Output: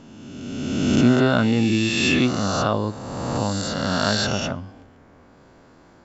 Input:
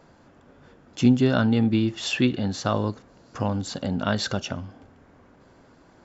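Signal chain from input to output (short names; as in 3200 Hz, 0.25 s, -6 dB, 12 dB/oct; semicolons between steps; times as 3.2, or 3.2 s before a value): spectral swells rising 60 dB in 1.92 s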